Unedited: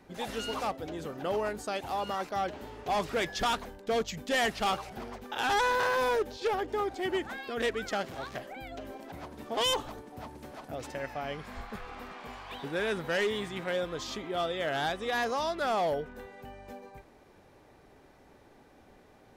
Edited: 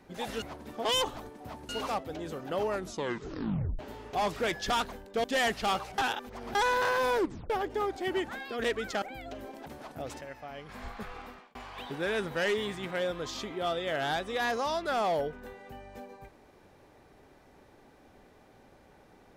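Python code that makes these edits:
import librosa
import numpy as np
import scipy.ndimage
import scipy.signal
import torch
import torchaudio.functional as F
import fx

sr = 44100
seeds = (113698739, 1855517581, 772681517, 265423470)

y = fx.edit(x, sr, fx.tape_stop(start_s=1.43, length_s=1.09),
    fx.cut(start_s=3.97, length_s=0.25),
    fx.reverse_span(start_s=4.96, length_s=0.57),
    fx.tape_stop(start_s=6.15, length_s=0.33),
    fx.cut(start_s=8.0, length_s=0.48),
    fx.move(start_s=9.14, length_s=1.27, to_s=0.42),
    fx.clip_gain(start_s=10.94, length_s=0.48, db=-7.0),
    fx.fade_out_span(start_s=11.92, length_s=0.36), tone=tone)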